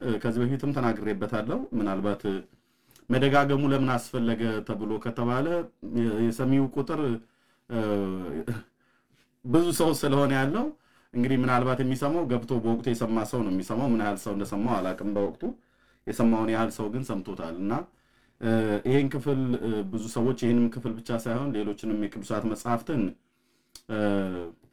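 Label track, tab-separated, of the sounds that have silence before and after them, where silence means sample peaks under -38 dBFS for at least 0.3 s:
2.960000	7.180000	sound
7.700000	8.610000	sound
9.450000	10.710000	sound
11.140000	15.530000	sound
16.070000	17.840000	sound
18.410000	23.120000	sound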